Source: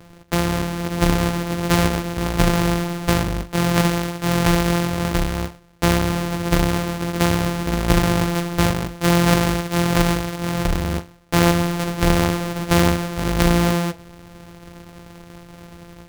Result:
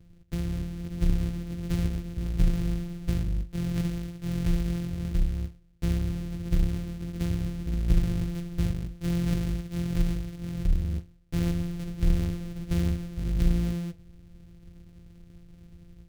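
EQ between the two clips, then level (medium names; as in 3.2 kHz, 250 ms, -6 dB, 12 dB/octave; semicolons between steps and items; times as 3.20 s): amplifier tone stack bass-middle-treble 10-0-1; treble shelf 3.9 kHz -5.5 dB; +5.5 dB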